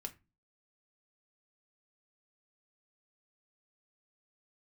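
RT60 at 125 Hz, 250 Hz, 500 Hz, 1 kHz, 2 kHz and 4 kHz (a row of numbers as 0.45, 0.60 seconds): 0.45, 0.45, 0.25, 0.25, 0.25, 0.20 seconds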